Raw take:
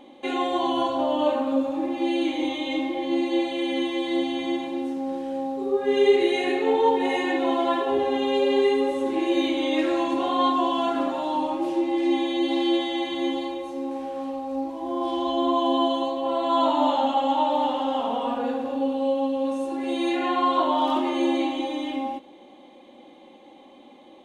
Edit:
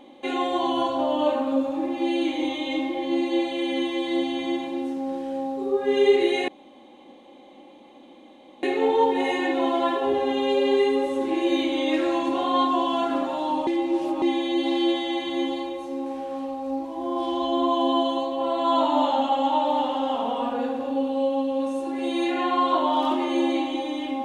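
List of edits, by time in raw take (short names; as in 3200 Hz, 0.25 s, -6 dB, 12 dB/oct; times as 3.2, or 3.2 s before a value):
6.48 insert room tone 2.15 s
11.52–12.07 reverse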